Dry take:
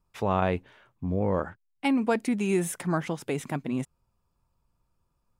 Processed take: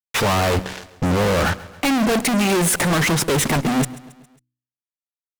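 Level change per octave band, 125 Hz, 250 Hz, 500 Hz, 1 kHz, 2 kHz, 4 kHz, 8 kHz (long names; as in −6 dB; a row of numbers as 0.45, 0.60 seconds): +10.0, +7.5, +7.5, +9.5, +14.0, +19.5, +18.0 decibels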